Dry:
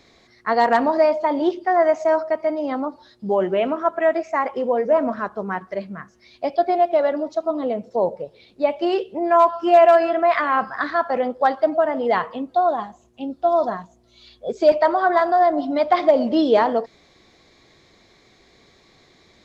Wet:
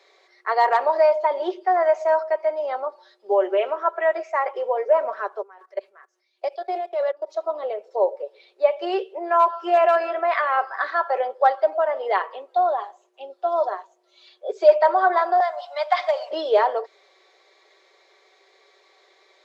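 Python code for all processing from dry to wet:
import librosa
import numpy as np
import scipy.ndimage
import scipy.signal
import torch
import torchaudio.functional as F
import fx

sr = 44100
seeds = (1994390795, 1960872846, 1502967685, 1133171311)

y = fx.chain(x, sr, fx.highpass(hz=150.0, slope=12),
    fx.high_shelf(hz=4400.0, db=10.0),
    fx.level_steps(step_db=23), at=(5.42, 7.34))
y = fx.chain(y, sr, fx.highpass(hz=730.0, slope=24),
    fx.high_shelf(hz=3300.0, db=8.0), at=(15.4, 16.31))
y = scipy.signal.sosfilt(scipy.signal.butter(8, 400.0, 'highpass', fs=sr, output='sos'), y)
y = fx.high_shelf(y, sr, hz=4200.0, db=-7.5)
y = y + 0.45 * np.pad(y, (int(5.2 * sr / 1000.0), 0))[:len(y)]
y = F.gain(torch.from_numpy(y), -1.0).numpy()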